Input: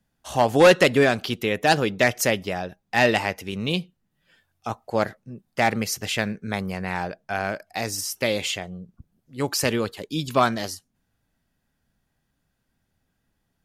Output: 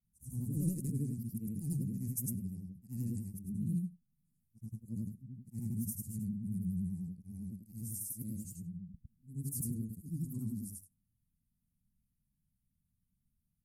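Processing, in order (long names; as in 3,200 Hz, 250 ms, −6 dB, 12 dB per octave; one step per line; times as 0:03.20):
every overlapping window played backwards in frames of 215 ms
elliptic band-stop filter 200–9,600 Hz, stop band 50 dB
pitch vibrato 10 Hz 97 cents
level −2 dB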